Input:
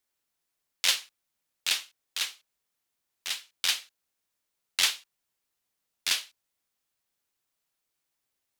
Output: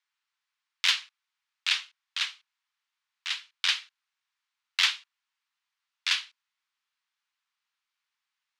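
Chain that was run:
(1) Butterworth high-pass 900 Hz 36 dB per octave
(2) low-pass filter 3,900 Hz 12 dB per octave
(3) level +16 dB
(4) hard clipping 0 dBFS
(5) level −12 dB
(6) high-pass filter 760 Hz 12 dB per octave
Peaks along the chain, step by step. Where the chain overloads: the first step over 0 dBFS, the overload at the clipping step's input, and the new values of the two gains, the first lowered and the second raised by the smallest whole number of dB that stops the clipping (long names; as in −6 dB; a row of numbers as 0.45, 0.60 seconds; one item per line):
−7.5, −12.0, +4.0, 0.0, −12.0, −10.0 dBFS
step 3, 4.0 dB
step 3 +12 dB, step 5 −8 dB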